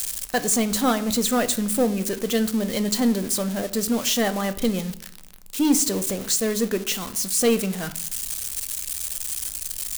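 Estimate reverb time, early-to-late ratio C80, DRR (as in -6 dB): 0.70 s, 19.0 dB, 11.0 dB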